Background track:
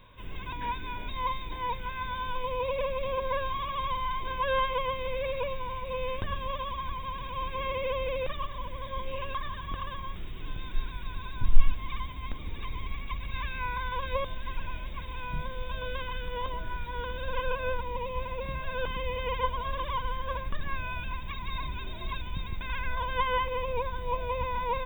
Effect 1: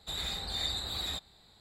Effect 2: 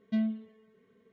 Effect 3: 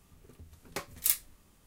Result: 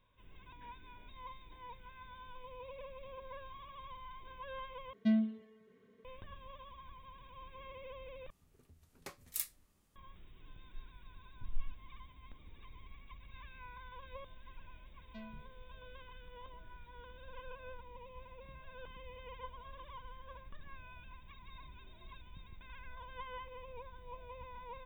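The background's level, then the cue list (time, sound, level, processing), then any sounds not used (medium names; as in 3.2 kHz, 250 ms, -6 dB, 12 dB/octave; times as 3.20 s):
background track -18.5 dB
4.93 s: replace with 2 -0.5 dB
8.30 s: replace with 3 -11 dB
15.02 s: add 2 -12 dB + high-pass 400 Hz
not used: 1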